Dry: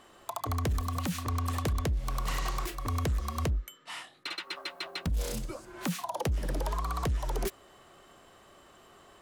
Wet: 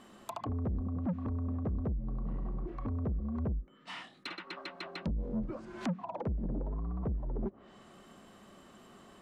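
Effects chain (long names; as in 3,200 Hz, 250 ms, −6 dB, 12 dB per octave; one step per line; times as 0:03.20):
treble cut that deepens with the level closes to 460 Hz, closed at −29 dBFS
parametric band 210 Hz +14.5 dB 0.74 octaves
soft clipping −27 dBFS, distortion −9 dB
level −2 dB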